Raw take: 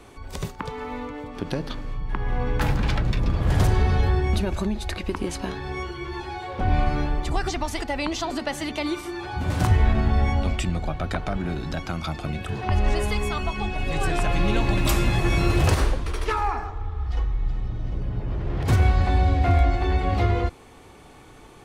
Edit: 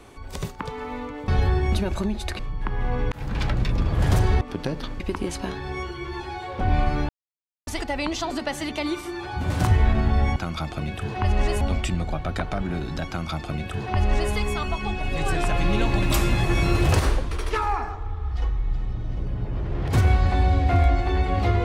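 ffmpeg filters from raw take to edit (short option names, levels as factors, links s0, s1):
-filter_complex "[0:a]asplit=10[s0][s1][s2][s3][s4][s5][s6][s7][s8][s9];[s0]atrim=end=1.282[s10];[s1]atrim=start=3.888:end=5.002[s11];[s2]atrim=start=1.868:end=2.6,asetpts=PTS-STARTPTS,afade=t=out:st=0.728:d=0.004:c=hsin[s12];[s3]atrim=start=2.6:end=3.892,asetpts=PTS-STARTPTS,afade=t=in:d=0.48:c=qsin[s13];[s4]atrim=start=1.278:end=1.872[s14];[s5]atrim=start=4.998:end=7.09,asetpts=PTS-STARTPTS,afade=t=out:st=2.088:d=0.004:c=hsin[s15];[s6]atrim=start=7.09:end=7.67,asetpts=PTS-STARTPTS,volume=0[s16];[s7]atrim=start=7.67:end=10.362,asetpts=PTS-STARTPTS,afade=t=in:d=0.004:c=hsin[s17];[s8]atrim=start=11.828:end=13.082[s18];[s9]atrim=start=10.358[s19];[s10][s11]acrossfade=d=0.004:c1=hsin:c2=hsin[s20];[s12][s13]concat=n=2:v=0:a=1[s21];[s20][s21]acrossfade=d=0.004:c1=hsin:c2=hsin[s22];[s22][s14]acrossfade=d=0.004:c1=hsin:c2=hsin[s23];[s15][s16][s17]concat=n=3:v=0:a=1[s24];[s23][s24]acrossfade=d=0.004:c1=hsin:c2=hsin[s25];[s25][s18]acrossfade=d=0.004:c1=hsin:c2=hsin[s26];[s26][s19]acrossfade=d=0.004:c1=hsin:c2=hsin"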